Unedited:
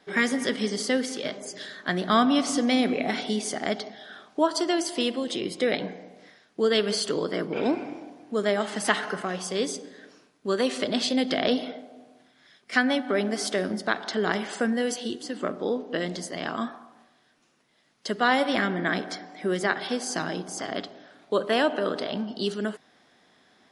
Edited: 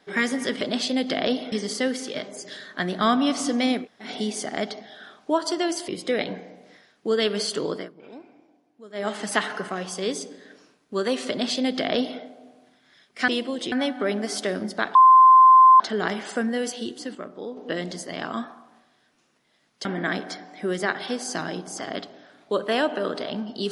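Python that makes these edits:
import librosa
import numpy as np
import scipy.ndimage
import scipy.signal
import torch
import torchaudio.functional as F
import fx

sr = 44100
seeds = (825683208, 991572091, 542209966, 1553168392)

y = fx.edit(x, sr, fx.room_tone_fill(start_s=2.89, length_s=0.27, crossfade_s=0.16),
    fx.move(start_s=4.97, length_s=0.44, to_s=12.81),
    fx.fade_down_up(start_s=7.28, length_s=1.32, db=-18.5, fade_s=0.14),
    fx.duplicate(start_s=10.82, length_s=0.91, to_s=0.61),
    fx.insert_tone(at_s=14.04, length_s=0.85, hz=1040.0, db=-8.5),
    fx.clip_gain(start_s=15.39, length_s=0.42, db=-7.5),
    fx.cut(start_s=18.09, length_s=0.57), tone=tone)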